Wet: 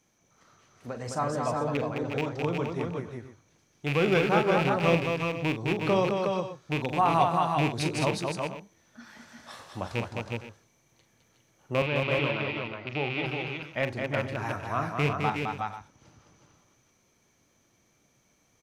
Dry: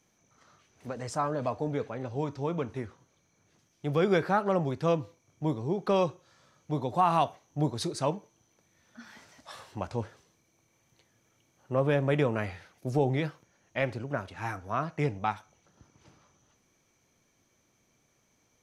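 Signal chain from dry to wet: rattle on loud lows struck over -29 dBFS, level -20 dBFS; 11.82–13.26 s: cabinet simulation 180–3900 Hz, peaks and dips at 190 Hz -8 dB, 270 Hz -7 dB, 470 Hz -9 dB, 710 Hz -5 dB, 1.7 kHz -10 dB; multi-tap echo 42/211/349/366/460/490 ms -10/-4.5/-12/-4.5/-17.5/-15.5 dB

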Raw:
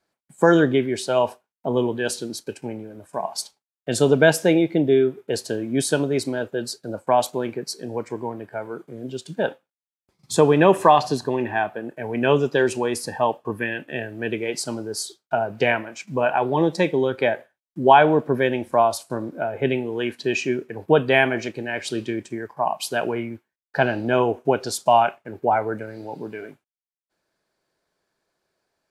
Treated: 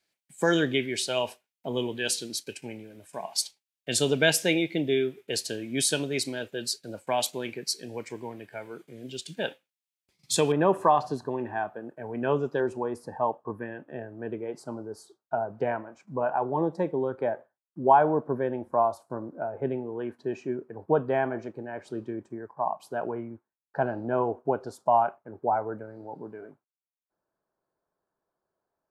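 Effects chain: resonant high shelf 1.7 kHz +9 dB, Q 1.5, from 10.52 s -7 dB, from 12.60 s -14 dB; trim -8 dB

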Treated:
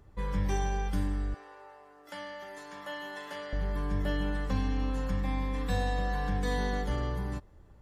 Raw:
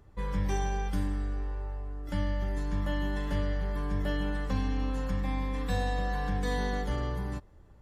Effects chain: 1.34–3.53 s: high-pass 590 Hz 12 dB/octave

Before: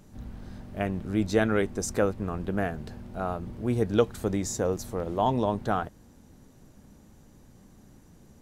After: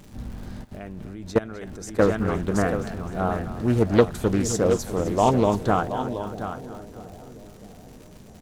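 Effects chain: delay 727 ms -10 dB; crackle 250 per s -45 dBFS; 0.64–1.99 s: level held to a coarse grid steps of 21 dB; two-band feedback delay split 640 Hz, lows 646 ms, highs 257 ms, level -13.5 dB; loudspeaker Doppler distortion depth 0.32 ms; trim +5.5 dB

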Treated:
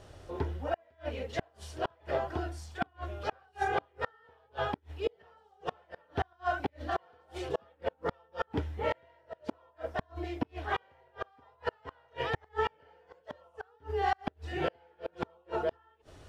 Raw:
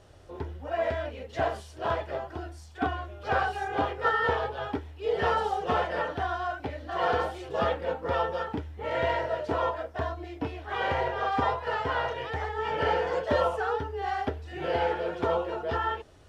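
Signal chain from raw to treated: inverted gate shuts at -21 dBFS, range -37 dB; trim +2.5 dB

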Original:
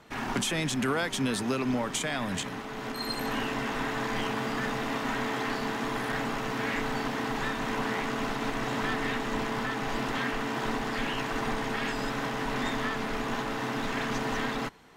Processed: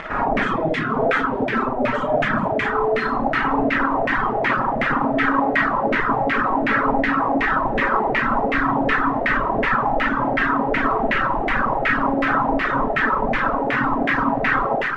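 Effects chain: two-band feedback delay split 1.1 kHz, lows 94 ms, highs 214 ms, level -5 dB; upward compressor, threshold -35 dBFS; 5.14–7.34 s: doubling 18 ms -6 dB; companded quantiser 2-bit; reverberation RT60 1.1 s, pre-delay 5 ms, DRR -6 dB; LFO low-pass saw down 2.7 Hz 640–2200 Hz; reverb removal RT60 1.8 s

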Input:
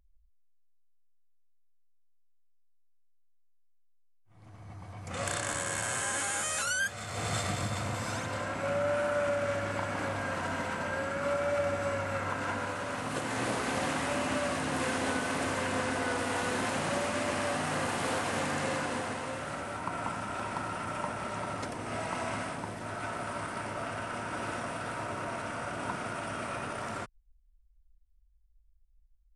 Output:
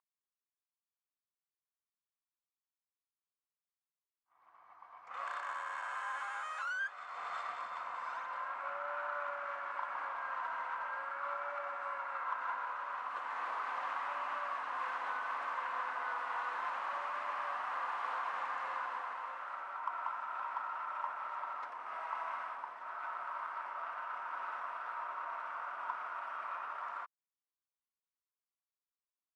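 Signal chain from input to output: ladder band-pass 1.2 kHz, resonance 60%; in parallel at -10 dB: saturation -37 dBFS, distortion -17 dB; on the sum: trim +2 dB

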